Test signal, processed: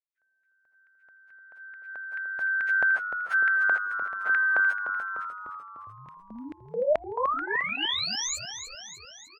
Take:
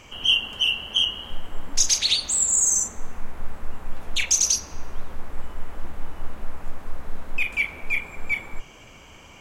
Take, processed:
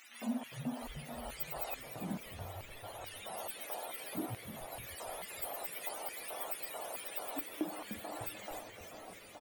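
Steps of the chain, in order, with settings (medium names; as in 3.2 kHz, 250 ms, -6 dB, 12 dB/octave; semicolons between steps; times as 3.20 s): spectrum inverted on a logarithmic axis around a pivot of 840 Hz; band-stop 1.6 kHz, Q 18; in parallel at -0.5 dB: compression, threshold -25 dBFS; on the sum: LFO high-pass square 2.3 Hz 660–2100 Hz; frequency-shifting echo 299 ms, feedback 59%, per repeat -98 Hz, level -9.5 dB; trim -6 dB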